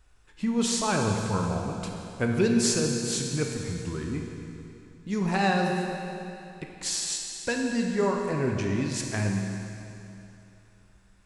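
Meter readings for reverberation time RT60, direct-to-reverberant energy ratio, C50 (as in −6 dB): 2.9 s, 1.0 dB, 2.5 dB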